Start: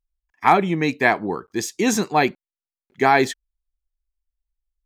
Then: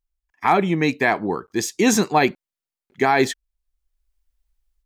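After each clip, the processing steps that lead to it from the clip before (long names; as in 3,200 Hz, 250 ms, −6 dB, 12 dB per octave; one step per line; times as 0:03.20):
automatic gain control gain up to 10.5 dB
brickwall limiter −6 dBFS, peak gain reduction 5 dB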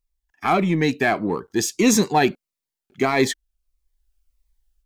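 in parallel at −7 dB: soft clipping −23.5 dBFS, distortion −6 dB
on the sum: phaser whose notches keep moving one way falling 1.6 Hz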